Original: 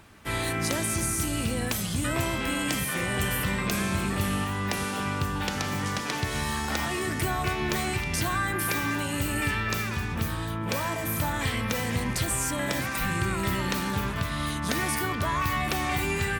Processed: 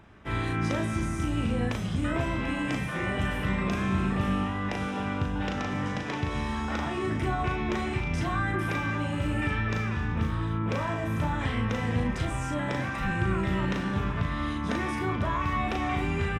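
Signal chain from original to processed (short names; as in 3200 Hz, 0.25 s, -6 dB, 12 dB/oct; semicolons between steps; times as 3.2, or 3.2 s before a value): tape spacing loss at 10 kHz 23 dB; notch 4400 Hz, Q 7.7; doubler 37 ms -4 dB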